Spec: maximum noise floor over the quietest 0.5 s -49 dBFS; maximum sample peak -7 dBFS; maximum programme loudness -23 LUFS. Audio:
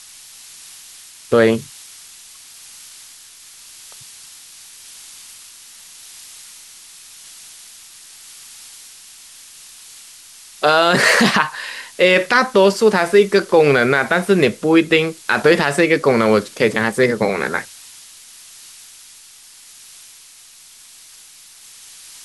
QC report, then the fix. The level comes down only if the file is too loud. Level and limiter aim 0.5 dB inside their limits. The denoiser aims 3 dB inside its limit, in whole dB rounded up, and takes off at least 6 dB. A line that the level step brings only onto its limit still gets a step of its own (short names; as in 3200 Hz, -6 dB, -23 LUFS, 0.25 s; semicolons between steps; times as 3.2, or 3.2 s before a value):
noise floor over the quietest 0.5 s -44 dBFS: fail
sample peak -1.5 dBFS: fail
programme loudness -15.0 LUFS: fail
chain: gain -8.5 dB